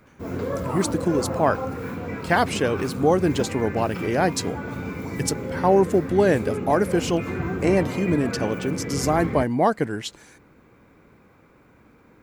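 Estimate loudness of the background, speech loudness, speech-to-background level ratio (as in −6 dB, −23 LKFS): −30.0 LKFS, −23.0 LKFS, 7.0 dB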